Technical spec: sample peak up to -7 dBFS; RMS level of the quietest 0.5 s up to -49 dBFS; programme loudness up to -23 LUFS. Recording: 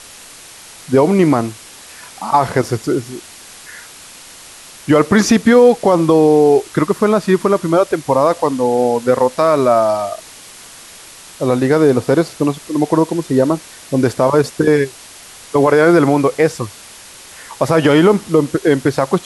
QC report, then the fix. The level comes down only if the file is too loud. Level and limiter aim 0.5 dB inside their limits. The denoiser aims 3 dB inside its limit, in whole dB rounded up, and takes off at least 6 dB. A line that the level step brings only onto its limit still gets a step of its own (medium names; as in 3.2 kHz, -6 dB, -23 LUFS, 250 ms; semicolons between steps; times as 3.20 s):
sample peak -1.5 dBFS: fail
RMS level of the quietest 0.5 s -38 dBFS: fail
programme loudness -14.0 LUFS: fail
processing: noise reduction 6 dB, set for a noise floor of -38 dBFS; trim -9.5 dB